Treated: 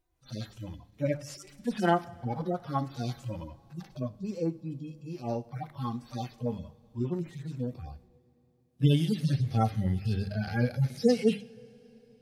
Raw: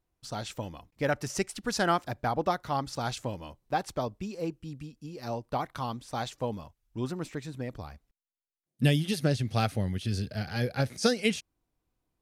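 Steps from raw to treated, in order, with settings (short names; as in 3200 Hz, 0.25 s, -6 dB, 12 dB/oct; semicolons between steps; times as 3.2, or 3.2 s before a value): median-filter separation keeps harmonic; notches 50/100/150/200 Hz; two-slope reverb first 0.51 s, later 3.9 s, from -16 dB, DRR 14.5 dB; gain +4 dB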